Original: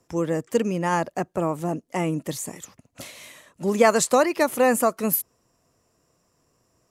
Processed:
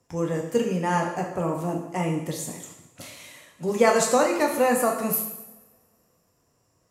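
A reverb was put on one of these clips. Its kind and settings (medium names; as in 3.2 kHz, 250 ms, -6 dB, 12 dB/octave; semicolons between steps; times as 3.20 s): two-slope reverb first 0.85 s, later 2.4 s, from -26 dB, DRR 0.5 dB; trim -4 dB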